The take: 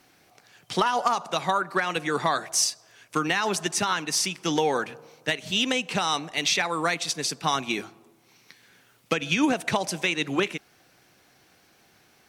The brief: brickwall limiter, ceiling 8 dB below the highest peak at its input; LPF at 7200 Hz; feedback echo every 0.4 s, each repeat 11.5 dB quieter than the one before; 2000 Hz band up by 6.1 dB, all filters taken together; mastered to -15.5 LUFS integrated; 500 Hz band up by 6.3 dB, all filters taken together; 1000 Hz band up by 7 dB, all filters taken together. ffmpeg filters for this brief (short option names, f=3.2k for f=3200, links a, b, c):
-af "lowpass=7.2k,equalizer=f=500:t=o:g=6,equalizer=f=1k:t=o:g=5.5,equalizer=f=2k:t=o:g=6,alimiter=limit=-12.5dB:level=0:latency=1,aecho=1:1:400|800|1200:0.266|0.0718|0.0194,volume=8.5dB"